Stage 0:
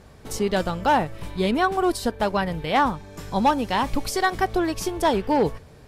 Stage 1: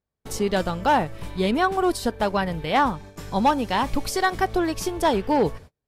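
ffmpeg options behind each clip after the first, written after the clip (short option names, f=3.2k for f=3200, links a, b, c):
-af "agate=range=-38dB:threshold=-40dB:ratio=16:detection=peak"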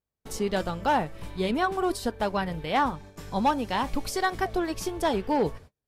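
-af "flanger=delay=2.4:depth=2.2:regen=-85:speed=1.4:shape=sinusoidal"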